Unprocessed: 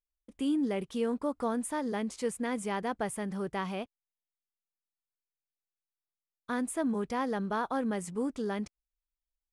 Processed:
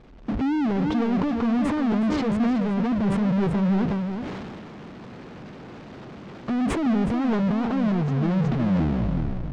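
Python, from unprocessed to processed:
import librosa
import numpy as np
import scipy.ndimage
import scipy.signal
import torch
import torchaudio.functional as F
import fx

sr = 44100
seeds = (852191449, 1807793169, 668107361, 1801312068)

y = fx.tape_stop_end(x, sr, length_s=1.75)
y = fx.recorder_agc(y, sr, target_db=-22.0, rise_db_per_s=44.0, max_gain_db=30)
y = fx.fold_sine(y, sr, drive_db=12, ceiling_db=-12.5)
y = fx.bandpass_q(y, sr, hz=200.0, q=1.5)
y = fx.power_curve(y, sr, exponent=0.35)
y = fx.air_absorb(y, sr, metres=170.0)
y = y + 10.0 ** (-7.5 / 20.0) * np.pad(y, (int(370 * sr / 1000.0), 0))[:len(y)]
y = fx.sustainer(y, sr, db_per_s=22.0)
y = F.gain(torch.from_numpy(y), -8.0).numpy()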